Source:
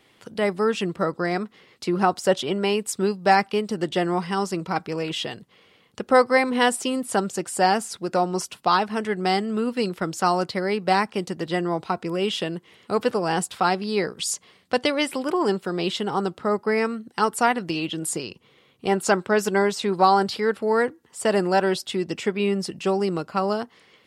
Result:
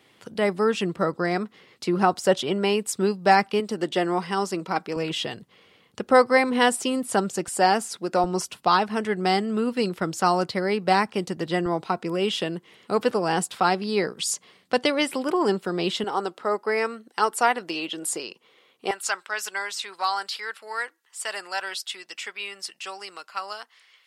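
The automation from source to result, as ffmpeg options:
-af "asetnsamples=n=441:p=0,asendcmd='3.6 highpass f 210;4.96 highpass f 51;7.48 highpass f 180;8.24 highpass f 44;11.66 highpass f 130;16.04 highpass f 390;18.91 highpass f 1400',highpass=71"

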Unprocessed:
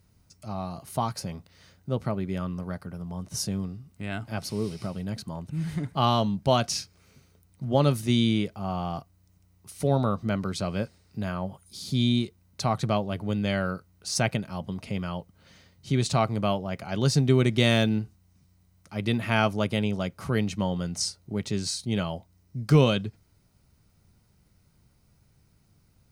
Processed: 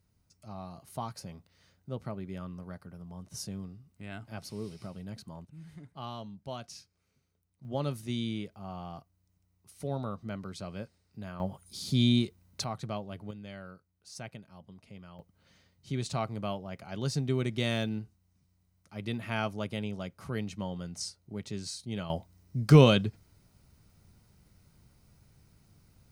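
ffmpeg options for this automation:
-af "asetnsamples=n=441:p=0,asendcmd='5.45 volume volume -18dB;7.65 volume volume -11dB;11.4 volume volume -1dB;12.64 volume volume -11dB;13.31 volume volume -18dB;15.19 volume volume -9dB;22.1 volume volume 1.5dB',volume=-9.5dB"

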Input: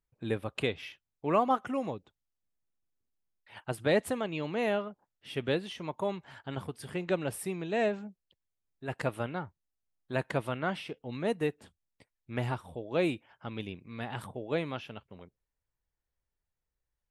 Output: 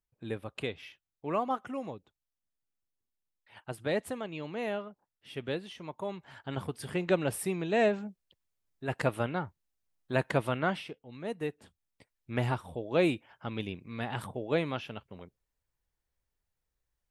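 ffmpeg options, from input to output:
-af "volume=15.5dB,afade=t=in:st=6.07:d=0.67:silence=0.421697,afade=t=out:st=10.64:d=0.42:silence=0.223872,afade=t=in:st=11.06:d=1.26:silence=0.237137"

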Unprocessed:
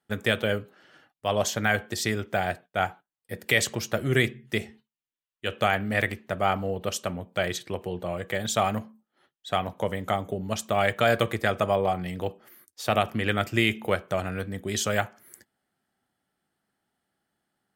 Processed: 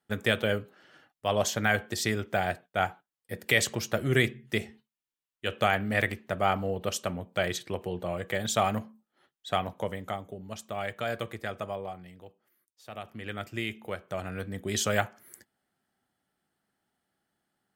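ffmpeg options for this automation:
-af "volume=17dB,afade=t=out:st=9.5:d=0.77:silence=0.354813,afade=t=out:st=11.6:d=0.66:silence=0.354813,afade=t=in:st=12.9:d=0.52:silence=0.354813,afade=t=in:st=13.95:d=0.82:silence=0.334965"

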